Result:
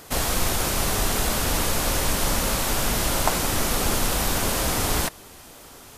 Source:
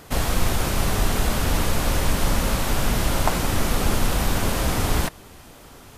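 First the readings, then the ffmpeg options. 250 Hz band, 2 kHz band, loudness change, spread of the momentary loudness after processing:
-2.5 dB, +0.5 dB, +0.5 dB, 1 LU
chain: -af "bass=f=250:g=-5,treble=f=4k:g=5"

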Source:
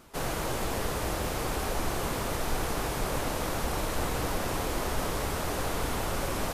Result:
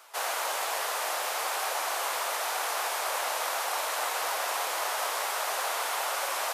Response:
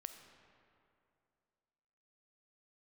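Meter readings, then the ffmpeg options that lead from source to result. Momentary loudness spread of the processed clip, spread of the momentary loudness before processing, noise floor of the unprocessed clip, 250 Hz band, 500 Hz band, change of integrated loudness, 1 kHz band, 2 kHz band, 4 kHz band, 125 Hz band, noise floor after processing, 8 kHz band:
0 LU, 0 LU, -33 dBFS, -22.0 dB, -2.5 dB, +2.0 dB, +4.0 dB, +4.5 dB, +4.5 dB, under -40 dB, -32 dBFS, +4.5 dB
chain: -af "highpass=f=650:w=0.5412,highpass=f=650:w=1.3066,volume=4.5dB"

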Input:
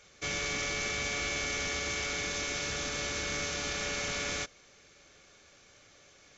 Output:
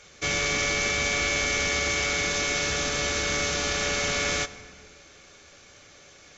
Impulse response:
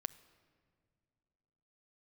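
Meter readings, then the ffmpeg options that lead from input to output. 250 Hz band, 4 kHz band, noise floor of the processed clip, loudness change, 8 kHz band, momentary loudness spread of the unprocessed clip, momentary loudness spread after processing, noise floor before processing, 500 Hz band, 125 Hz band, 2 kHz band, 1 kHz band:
+7.0 dB, +7.5 dB, -52 dBFS, +8.0 dB, n/a, 2 LU, 2 LU, -60 dBFS, +8.5 dB, +7.5 dB, +8.0 dB, +8.0 dB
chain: -filter_complex "[1:a]atrim=start_sample=2205,afade=t=out:st=0.37:d=0.01,atrim=end_sample=16758,asetrate=24255,aresample=44100[a];[0:a][a]afir=irnorm=-1:irlink=0,volume=6.5dB"

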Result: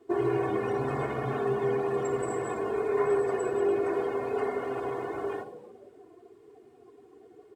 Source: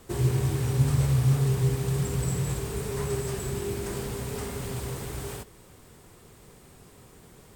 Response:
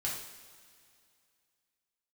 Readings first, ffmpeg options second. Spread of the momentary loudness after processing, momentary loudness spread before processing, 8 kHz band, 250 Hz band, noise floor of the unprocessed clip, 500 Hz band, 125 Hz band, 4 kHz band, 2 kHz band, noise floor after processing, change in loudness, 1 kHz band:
7 LU, 12 LU, -14.0 dB, -1.0 dB, -53 dBFS, +7.5 dB, -15.5 dB, under -10 dB, +3.0 dB, -56 dBFS, -1.5 dB, +8.0 dB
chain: -filter_complex "[0:a]lowpass=f=1.3k:p=1,aecho=1:1:2.8:0.69,asplit=4[a][b][c][d];[b]adelay=285,afreqshift=86,volume=-16dB[e];[c]adelay=570,afreqshift=172,volume=-24.9dB[f];[d]adelay=855,afreqshift=258,volume=-33.7dB[g];[a][e][f][g]amix=inputs=4:normalize=0,asplit=2[h][i];[1:a]atrim=start_sample=2205,adelay=62[j];[i][j]afir=irnorm=-1:irlink=0,volume=-10.5dB[k];[h][k]amix=inputs=2:normalize=0,afftdn=nr=18:nf=-45,highpass=460,volume=8dB"

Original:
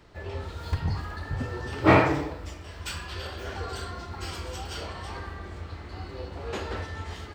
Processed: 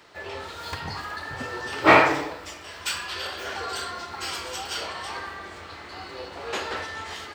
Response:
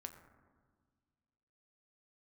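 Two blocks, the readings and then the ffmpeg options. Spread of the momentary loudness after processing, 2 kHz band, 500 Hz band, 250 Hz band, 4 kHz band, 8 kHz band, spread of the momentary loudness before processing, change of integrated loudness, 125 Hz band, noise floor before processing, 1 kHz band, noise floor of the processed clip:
19 LU, +7.0 dB, +2.0 dB, -2.0 dB, +8.0 dB, +8.0 dB, 17 LU, +4.0 dB, -10.0 dB, -43 dBFS, +5.5 dB, -42 dBFS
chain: -af "highpass=f=870:p=1,volume=8dB"

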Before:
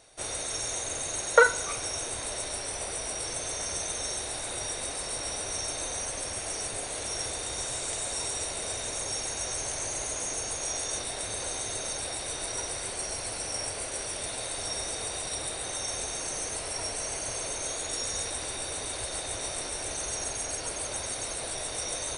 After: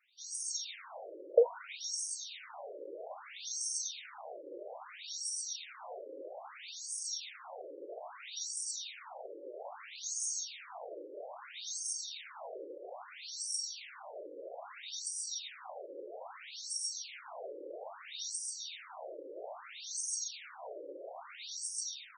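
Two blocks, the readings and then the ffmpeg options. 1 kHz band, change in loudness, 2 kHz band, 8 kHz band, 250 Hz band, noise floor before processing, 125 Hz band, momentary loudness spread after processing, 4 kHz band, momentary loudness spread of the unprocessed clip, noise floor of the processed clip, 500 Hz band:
-12.5 dB, -9.0 dB, -17.0 dB, -9.5 dB, -13.0 dB, -36 dBFS, under -40 dB, 12 LU, -7.5 dB, 2 LU, -53 dBFS, -5.0 dB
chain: -af "equalizer=f=1.7k:t=o:w=0.46:g=-5,dynaudnorm=f=100:g=7:m=5dB,afftfilt=real='re*between(b*sr/1024,400*pow(6800/400,0.5+0.5*sin(2*PI*0.61*pts/sr))/1.41,400*pow(6800/400,0.5+0.5*sin(2*PI*0.61*pts/sr))*1.41)':imag='im*between(b*sr/1024,400*pow(6800/400,0.5+0.5*sin(2*PI*0.61*pts/sr))/1.41,400*pow(6800/400,0.5+0.5*sin(2*PI*0.61*pts/sr))*1.41)':win_size=1024:overlap=0.75,volume=-6.5dB"

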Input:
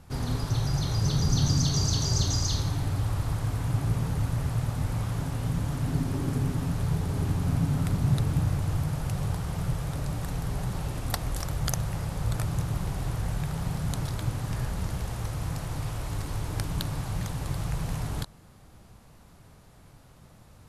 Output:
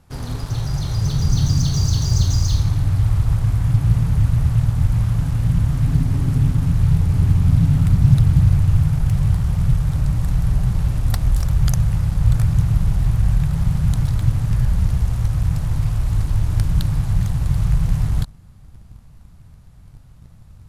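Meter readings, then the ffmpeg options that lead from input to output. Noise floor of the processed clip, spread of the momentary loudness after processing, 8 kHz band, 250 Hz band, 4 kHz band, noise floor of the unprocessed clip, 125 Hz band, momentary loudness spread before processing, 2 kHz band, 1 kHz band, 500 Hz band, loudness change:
-44 dBFS, 6 LU, +1.0 dB, +7.5 dB, n/a, -53 dBFS, +11.0 dB, 8 LU, +2.5 dB, +0.5 dB, -0.5 dB, +10.5 dB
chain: -filter_complex "[0:a]asubboost=boost=5.5:cutoff=160,asplit=2[a][b];[b]acrusher=bits=4:mix=0:aa=0.5,volume=-6dB[c];[a][c]amix=inputs=2:normalize=0,volume=-2.5dB"

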